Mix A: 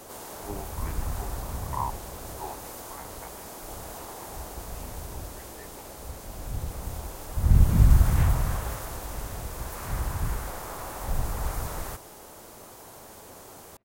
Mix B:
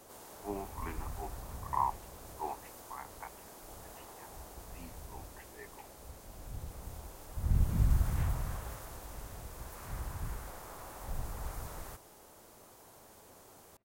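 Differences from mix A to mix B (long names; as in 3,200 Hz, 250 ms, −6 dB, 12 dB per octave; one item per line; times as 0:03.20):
first sound −10.5 dB
second sound −5.5 dB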